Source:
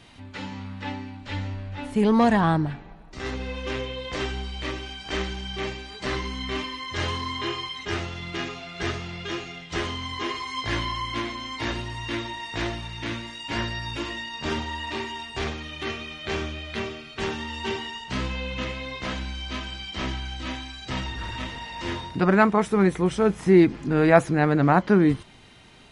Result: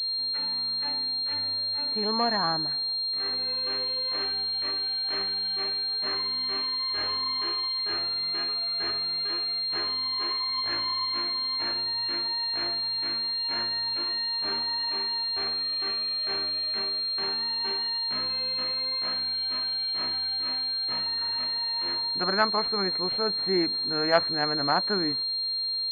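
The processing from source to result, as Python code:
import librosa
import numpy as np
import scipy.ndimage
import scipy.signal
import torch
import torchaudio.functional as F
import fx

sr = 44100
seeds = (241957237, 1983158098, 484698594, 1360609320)

y = fx.highpass(x, sr, hz=1100.0, slope=6)
y = fx.pwm(y, sr, carrier_hz=4200.0)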